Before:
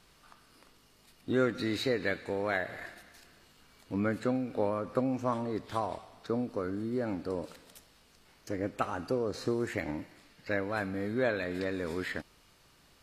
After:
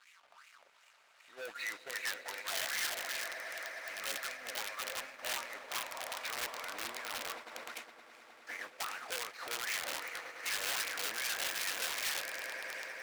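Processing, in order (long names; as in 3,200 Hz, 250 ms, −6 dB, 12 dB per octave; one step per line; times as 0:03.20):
downward compressor 5 to 1, threshold −43 dBFS, peak gain reduction 18 dB
LFO wah 2.6 Hz 530–2,400 Hz, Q 5.6
leveller curve on the samples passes 5
transient designer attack −3 dB, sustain +2 dB
echo that builds up and dies away 103 ms, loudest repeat 8, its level −13 dB
noise gate −47 dBFS, range −10 dB
wrap-around overflow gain 38 dB
tilt shelving filter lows −9.5 dB, about 660 Hz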